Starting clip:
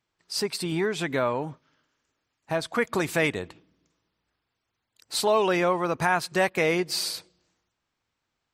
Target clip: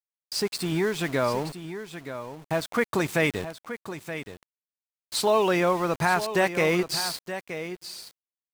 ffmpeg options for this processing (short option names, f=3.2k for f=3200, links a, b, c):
-af "equalizer=f=96:t=o:w=2.7:g=3,aeval=exprs='val(0)*gte(abs(val(0)),0.0188)':c=same,aecho=1:1:924:0.282"